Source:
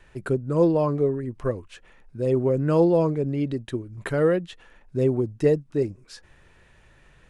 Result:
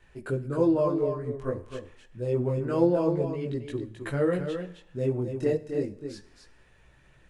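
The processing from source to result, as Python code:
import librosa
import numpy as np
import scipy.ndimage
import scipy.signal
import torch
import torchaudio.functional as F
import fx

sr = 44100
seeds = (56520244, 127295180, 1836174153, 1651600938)

p1 = fx.chorus_voices(x, sr, voices=2, hz=0.28, base_ms=20, depth_ms=4.9, mix_pct=50)
p2 = p1 + fx.echo_single(p1, sr, ms=265, db=-7.5, dry=0)
p3 = fx.rev_plate(p2, sr, seeds[0], rt60_s=0.82, hf_ratio=0.95, predelay_ms=0, drr_db=14.0)
y = F.gain(torch.from_numpy(p3), -2.0).numpy()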